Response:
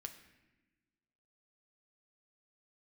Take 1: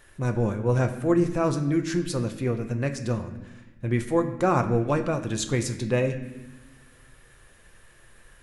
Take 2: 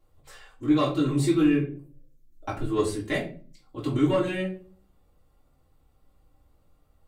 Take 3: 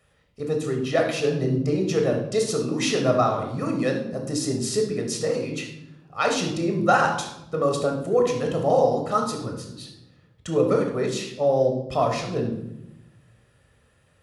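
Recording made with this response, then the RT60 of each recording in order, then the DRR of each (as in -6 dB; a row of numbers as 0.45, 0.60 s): 1; not exponential, 0.40 s, 0.85 s; 5.5, -6.5, 2.5 dB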